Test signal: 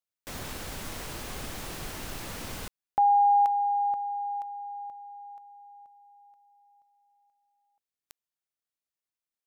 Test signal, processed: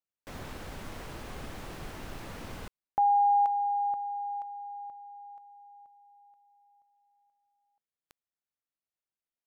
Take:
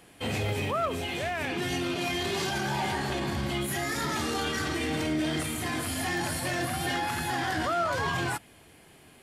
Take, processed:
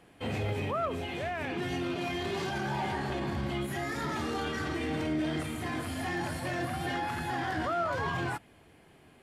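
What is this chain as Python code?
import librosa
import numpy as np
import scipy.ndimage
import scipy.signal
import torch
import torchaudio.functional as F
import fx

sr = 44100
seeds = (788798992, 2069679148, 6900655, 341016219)

y = fx.high_shelf(x, sr, hz=3500.0, db=-11.5)
y = y * 10.0 ** (-2.0 / 20.0)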